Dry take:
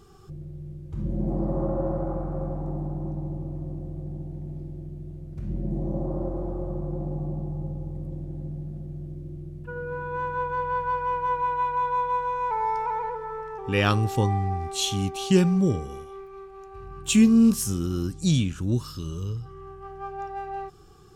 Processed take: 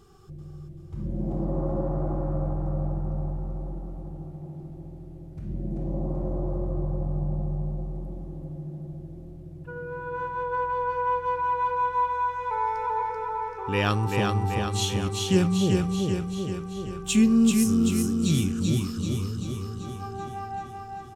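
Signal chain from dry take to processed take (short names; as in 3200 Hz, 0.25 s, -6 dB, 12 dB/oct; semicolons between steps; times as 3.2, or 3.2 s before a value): feedback echo 0.386 s, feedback 60%, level -3.5 dB; gain -2.5 dB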